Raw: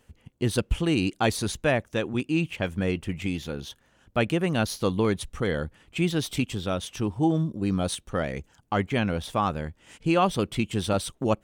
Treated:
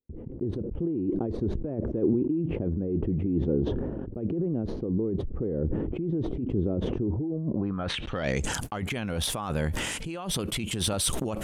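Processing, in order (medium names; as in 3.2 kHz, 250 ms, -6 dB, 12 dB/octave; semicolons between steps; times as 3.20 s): compressor with a negative ratio -31 dBFS, ratio -1; gate -54 dBFS, range -38 dB; low-pass sweep 370 Hz -> 12 kHz, 7.27–8.58 s; decay stretcher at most 25 dB/s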